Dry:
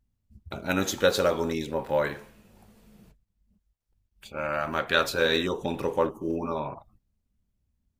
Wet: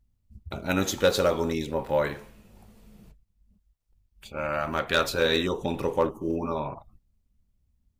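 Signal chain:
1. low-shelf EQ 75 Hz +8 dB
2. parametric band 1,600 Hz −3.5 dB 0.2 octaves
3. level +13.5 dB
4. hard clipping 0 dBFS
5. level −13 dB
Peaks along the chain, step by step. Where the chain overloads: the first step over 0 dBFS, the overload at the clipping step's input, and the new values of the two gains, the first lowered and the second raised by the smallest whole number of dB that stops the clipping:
−6.5, −7.0, +6.5, 0.0, −13.0 dBFS
step 3, 6.5 dB
step 3 +6.5 dB, step 5 −6 dB

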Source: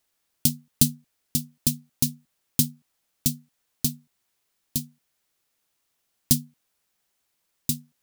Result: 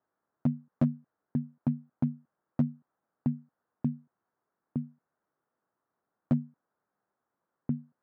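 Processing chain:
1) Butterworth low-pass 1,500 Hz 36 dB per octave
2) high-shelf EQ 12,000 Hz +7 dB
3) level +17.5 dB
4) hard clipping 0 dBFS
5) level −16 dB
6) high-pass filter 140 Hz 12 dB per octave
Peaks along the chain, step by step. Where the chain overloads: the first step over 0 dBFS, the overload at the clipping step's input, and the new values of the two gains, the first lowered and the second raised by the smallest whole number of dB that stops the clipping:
−10.0, −10.0, +7.5, 0.0, −16.0, −13.0 dBFS
step 3, 7.5 dB
step 3 +9.5 dB, step 5 −8 dB

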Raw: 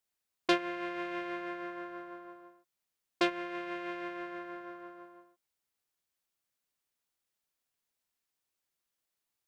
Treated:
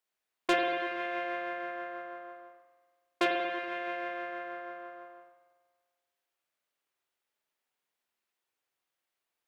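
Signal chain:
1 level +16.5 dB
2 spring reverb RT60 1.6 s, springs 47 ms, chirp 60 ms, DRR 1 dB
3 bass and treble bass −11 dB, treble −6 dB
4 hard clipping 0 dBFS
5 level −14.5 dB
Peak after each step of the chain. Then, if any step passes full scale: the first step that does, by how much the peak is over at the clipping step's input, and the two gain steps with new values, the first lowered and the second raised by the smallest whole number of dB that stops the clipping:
+3.5, +3.5, +4.0, 0.0, −14.5 dBFS
step 1, 4.0 dB
step 1 +12.5 dB, step 5 −10.5 dB

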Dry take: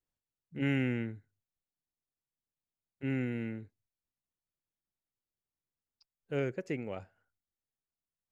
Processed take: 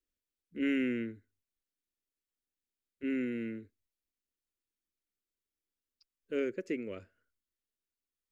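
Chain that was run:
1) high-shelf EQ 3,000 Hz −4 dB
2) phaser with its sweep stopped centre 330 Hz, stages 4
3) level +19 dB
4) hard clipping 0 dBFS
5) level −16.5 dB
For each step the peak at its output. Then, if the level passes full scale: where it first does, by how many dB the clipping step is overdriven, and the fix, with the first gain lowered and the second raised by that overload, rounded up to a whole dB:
−19.0, −24.0, −5.0, −5.0, −21.5 dBFS
no step passes full scale

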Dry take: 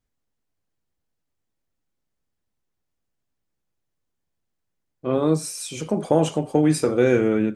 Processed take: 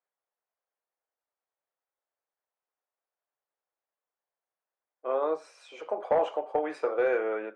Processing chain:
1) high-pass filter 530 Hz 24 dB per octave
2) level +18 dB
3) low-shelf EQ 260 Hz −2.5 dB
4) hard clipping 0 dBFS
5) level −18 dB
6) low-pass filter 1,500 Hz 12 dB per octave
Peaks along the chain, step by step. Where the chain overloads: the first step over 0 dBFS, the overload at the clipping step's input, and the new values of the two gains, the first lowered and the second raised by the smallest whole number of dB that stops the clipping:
−10.5, +7.5, +7.0, 0.0, −18.0, −17.5 dBFS
step 2, 7.0 dB
step 2 +11 dB, step 5 −11 dB

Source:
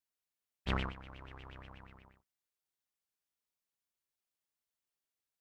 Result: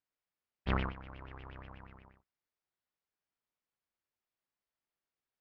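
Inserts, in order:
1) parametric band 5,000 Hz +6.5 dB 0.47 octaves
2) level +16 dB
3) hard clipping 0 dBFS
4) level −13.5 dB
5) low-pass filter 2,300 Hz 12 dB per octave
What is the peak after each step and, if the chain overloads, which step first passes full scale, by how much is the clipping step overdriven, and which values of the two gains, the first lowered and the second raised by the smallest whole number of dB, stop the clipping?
−18.5, −2.5, −2.5, −16.0, −17.5 dBFS
no step passes full scale

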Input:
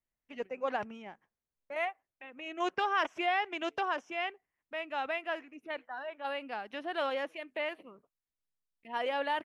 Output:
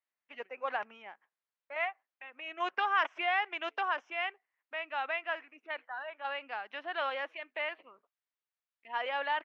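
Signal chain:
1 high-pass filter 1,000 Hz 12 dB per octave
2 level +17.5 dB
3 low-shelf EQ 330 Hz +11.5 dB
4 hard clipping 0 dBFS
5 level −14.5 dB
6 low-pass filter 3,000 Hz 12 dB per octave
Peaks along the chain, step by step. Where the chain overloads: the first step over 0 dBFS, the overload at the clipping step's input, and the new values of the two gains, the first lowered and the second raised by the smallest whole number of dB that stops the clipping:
−20.5, −3.0, −2.0, −2.0, −16.5, −17.5 dBFS
no step passes full scale

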